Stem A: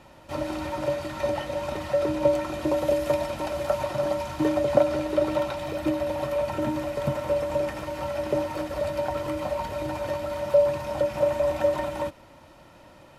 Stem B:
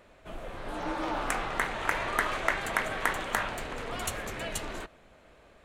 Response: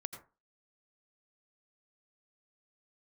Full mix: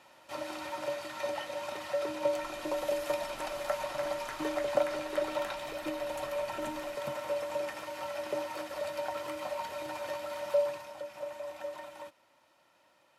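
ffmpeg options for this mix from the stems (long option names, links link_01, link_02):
-filter_complex "[0:a]highpass=frequency=1000:poles=1,volume=-2.5dB,afade=type=out:start_time=10.59:duration=0.34:silence=0.375837[link_01];[1:a]adelay=2100,volume=-17dB[link_02];[link_01][link_02]amix=inputs=2:normalize=0"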